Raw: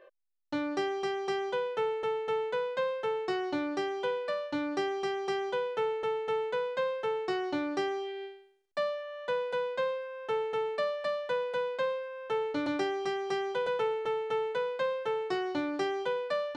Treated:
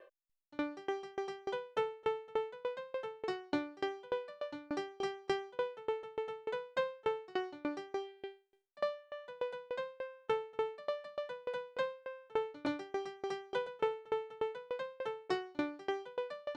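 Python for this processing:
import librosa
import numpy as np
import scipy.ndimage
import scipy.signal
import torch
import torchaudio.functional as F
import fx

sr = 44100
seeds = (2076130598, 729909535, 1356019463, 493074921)

y = fx.tremolo_decay(x, sr, direction='decaying', hz=3.4, depth_db=29)
y = F.gain(torch.from_numpy(y), 1.0).numpy()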